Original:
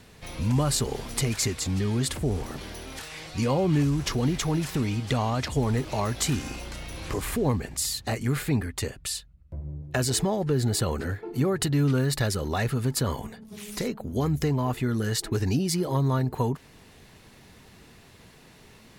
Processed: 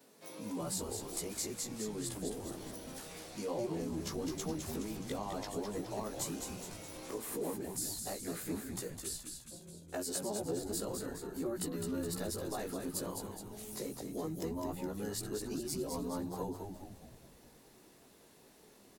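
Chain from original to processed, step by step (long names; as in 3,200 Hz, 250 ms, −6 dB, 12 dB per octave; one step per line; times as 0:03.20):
every overlapping window played backwards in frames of 38 ms
Bessel high-pass filter 350 Hz, order 4
parametric band 2,300 Hz −13.5 dB 2.8 octaves
downward compressor 1.5 to 1, threshold −44 dBFS, peak gain reduction 5.5 dB
on a send: echo with shifted repeats 209 ms, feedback 53%, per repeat −84 Hz, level −5.5 dB
on the sum: level +1.5 dB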